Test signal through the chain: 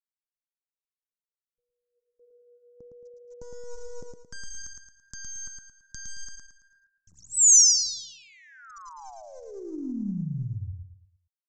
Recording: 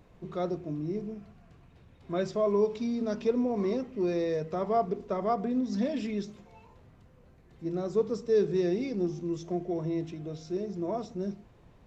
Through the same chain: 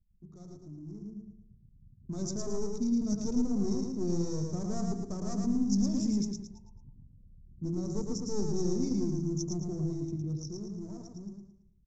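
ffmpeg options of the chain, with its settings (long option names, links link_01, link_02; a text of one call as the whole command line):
ffmpeg -i in.wav -filter_complex "[0:a]asplit=2[link_01][link_02];[link_02]acompressor=threshold=-38dB:ratio=6,volume=1dB[link_03];[link_01][link_03]amix=inputs=2:normalize=0,flanger=delay=7.6:depth=5:regen=82:speed=0.57:shape=sinusoidal,anlmdn=0.0631,adynamicequalizer=threshold=0.00631:dfrequency=2200:dqfactor=1.1:tfrequency=2200:tqfactor=1.1:attack=5:release=100:ratio=0.375:range=2.5:mode=cutabove:tftype=bell,aeval=exprs='clip(val(0),-1,0.0251)':channel_layout=same,aresample=16000,aresample=44100,bandreject=frequency=329.8:width_type=h:width=4,bandreject=frequency=659.6:width_type=h:width=4,dynaudnorm=framelen=280:gausssize=13:maxgain=15dB,firequalizer=gain_entry='entry(190,0);entry(510,-19);entry(1100,-17);entry(1700,-24);entry(3000,-27);entry(5900,12)':delay=0.05:min_phase=1,asplit=2[link_04][link_05];[link_05]aecho=0:1:111|222|333|444|555:0.668|0.247|0.0915|0.0339|0.0125[link_06];[link_04][link_06]amix=inputs=2:normalize=0,volume=-8dB" out.wav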